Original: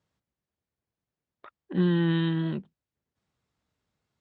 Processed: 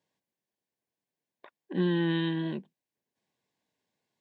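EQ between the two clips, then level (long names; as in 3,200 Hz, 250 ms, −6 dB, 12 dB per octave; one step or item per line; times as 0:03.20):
high-pass filter 220 Hz 12 dB per octave
Butterworth band-reject 1,300 Hz, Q 3.8
0.0 dB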